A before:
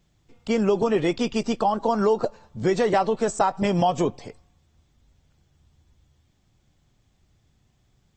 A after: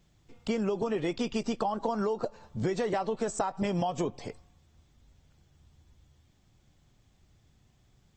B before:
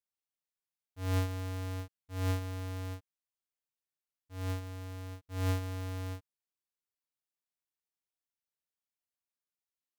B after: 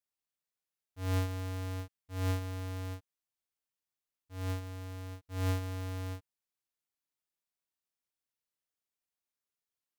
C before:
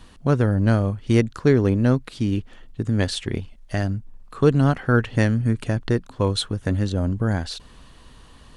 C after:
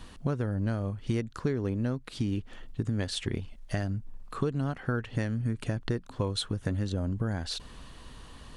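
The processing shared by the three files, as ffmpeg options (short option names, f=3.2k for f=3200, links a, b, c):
-af "acompressor=threshold=-27dB:ratio=6"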